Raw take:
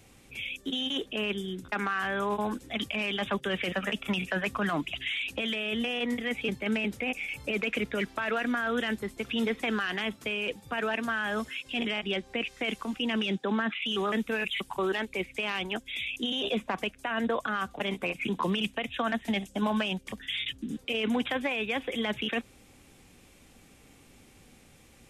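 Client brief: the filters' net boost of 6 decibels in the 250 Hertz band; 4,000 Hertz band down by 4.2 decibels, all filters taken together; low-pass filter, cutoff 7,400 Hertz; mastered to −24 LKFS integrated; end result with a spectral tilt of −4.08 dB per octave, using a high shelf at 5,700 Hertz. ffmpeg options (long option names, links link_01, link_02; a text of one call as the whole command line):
ffmpeg -i in.wav -af "lowpass=7400,equalizer=frequency=250:width_type=o:gain=7,equalizer=frequency=4000:width_type=o:gain=-8.5,highshelf=frequency=5700:gain=6.5,volume=5dB" out.wav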